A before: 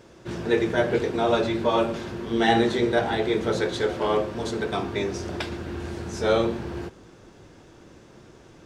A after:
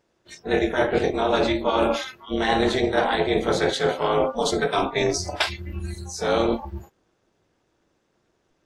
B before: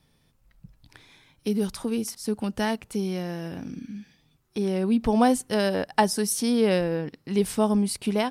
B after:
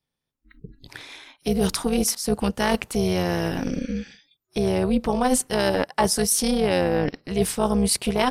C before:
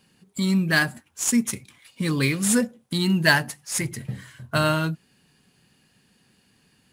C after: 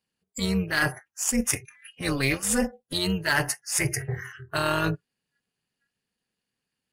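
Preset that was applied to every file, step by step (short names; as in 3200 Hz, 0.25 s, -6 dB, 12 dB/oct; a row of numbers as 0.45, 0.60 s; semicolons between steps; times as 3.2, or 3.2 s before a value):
spectral noise reduction 30 dB; low shelf 270 Hz -6.5 dB; reverse; compressor 6:1, threshold -32 dBFS; reverse; AM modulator 270 Hz, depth 60%; normalise peaks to -6 dBFS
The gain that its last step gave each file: +16.5, +17.0, +13.0 dB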